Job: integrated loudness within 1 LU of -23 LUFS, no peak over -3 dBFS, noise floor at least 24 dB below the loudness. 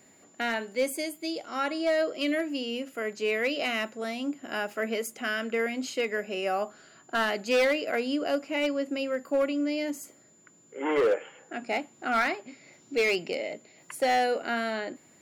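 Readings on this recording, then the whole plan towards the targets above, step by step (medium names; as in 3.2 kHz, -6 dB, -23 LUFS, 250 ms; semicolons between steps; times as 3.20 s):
clipped samples 1.0%; clipping level -19.5 dBFS; steady tone 7.1 kHz; tone level -59 dBFS; loudness -29.0 LUFS; peak level -19.5 dBFS; loudness target -23.0 LUFS
-> clip repair -19.5 dBFS; band-stop 7.1 kHz, Q 30; trim +6 dB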